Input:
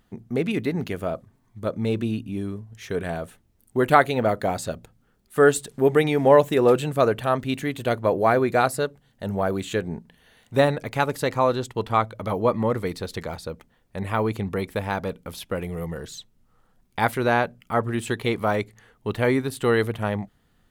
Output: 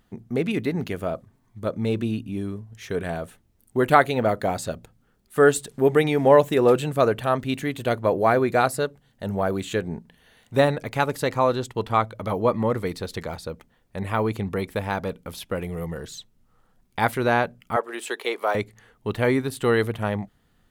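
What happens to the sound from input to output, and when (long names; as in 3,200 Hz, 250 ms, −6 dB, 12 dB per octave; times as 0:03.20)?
0:17.76–0:18.55: high-pass filter 390 Hz 24 dB per octave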